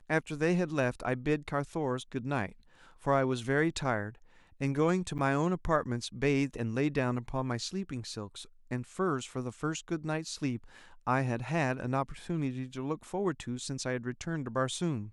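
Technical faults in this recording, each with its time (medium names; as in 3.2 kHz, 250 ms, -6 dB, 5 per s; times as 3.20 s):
5.18–5.19 s: dropout 8.5 ms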